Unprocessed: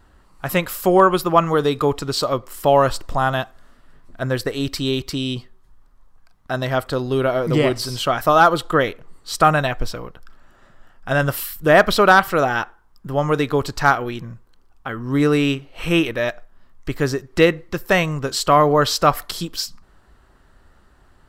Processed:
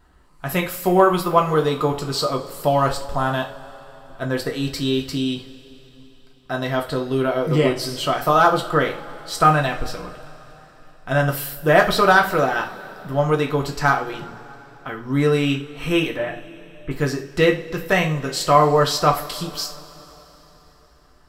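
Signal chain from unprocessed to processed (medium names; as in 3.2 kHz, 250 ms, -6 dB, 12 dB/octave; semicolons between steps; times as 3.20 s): 16.16–16.91 s: CVSD coder 16 kbps; two-slope reverb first 0.32 s, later 3.9 s, from -22 dB, DRR 1 dB; trim -4 dB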